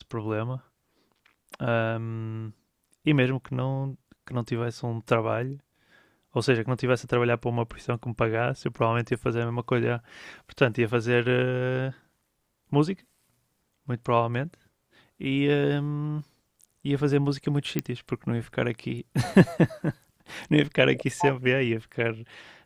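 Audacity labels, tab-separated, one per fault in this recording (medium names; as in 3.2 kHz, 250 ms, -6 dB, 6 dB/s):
17.790000	17.790000	pop -12 dBFS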